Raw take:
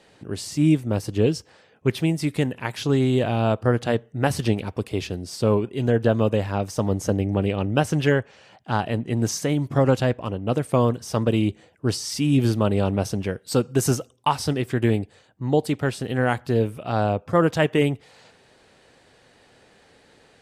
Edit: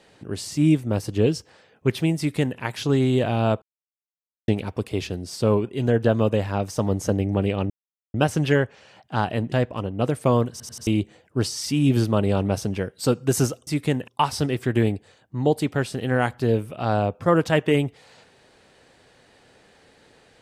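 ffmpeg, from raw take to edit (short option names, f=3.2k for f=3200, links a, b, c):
-filter_complex "[0:a]asplit=11[a][b][c][d][e][f][g][h][i][j][k];[a]atrim=end=3.62,asetpts=PTS-STARTPTS,afade=t=out:st=3.616:d=0.004:c=hsin[l];[b]atrim=start=3.62:end=4.48,asetpts=PTS-STARTPTS,volume=0[m];[c]atrim=start=4.48:end=7.7,asetpts=PTS-STARTPTS,afade=t=in:d=0.004:c=hsin,afade=t=out:st=3.216:d=0.004:c=hsin,apad=pad_dur=0.44[n];[d]atrim=start=7.7:end=9.082,asetpts=PTS-STARTPTS,afade=t=in:d=0.004:c=hsin[o];[e]atrim=start=9.998:end=11.082[p];[f]atrim=start=10.988:end=11.082[q];[g]atrim=start=10.988:end=11.082[r];[h]atrim=start=10.988:end=11.082[s];[i]atrim=start=11.348:end=14.152[t];[j]atrim=start=2.178:end=2.592[u];[k]atrim=start=14.148[v];[l][m][n][o]concat=n=4:v=0:a=1[w];[w][p]acrossfade=d=0.004:c1=hsin:c2=hsin[x];[x][q]acrossfade=d=0.004:c1=hsin:c2=hsin[y];[y][r]acrossfade=d=0.004:c1=hsin:c2=hsin[z];[z][s]acrossfade=d=0.004:c1=hsin:c2=hsin[aa];[aa][t]acrossfade=d=0.004:c1=hsin:c2=hsin[ab];[ab][u]acrossfade=d=0.004:c1=hsin:c2=hsin[ac];[ac][v]acrossfade=d=0.004:c1=hsin:c2=hsin"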